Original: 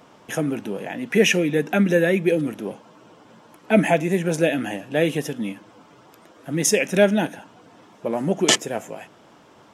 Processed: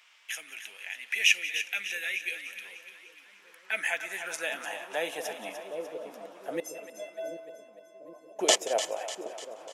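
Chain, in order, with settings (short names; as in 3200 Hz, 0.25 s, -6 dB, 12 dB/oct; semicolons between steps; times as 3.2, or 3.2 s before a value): dynamic EQ 1500 Hz, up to -6 dB, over -34 dBFS, Q 0.82; 6.6–8.39 metallic resonator 310 Hz, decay 0.66 s, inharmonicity 0.03; split-band echo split 550 Hz, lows 0.765 s, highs 0.298 s, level -10.5 dB; high-pass sweep 2300 Hz -> 590 Hz, 3.18–5.93; feedback echo 0.181 s, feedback 24%, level -18.5 dB; gain -4.5 dB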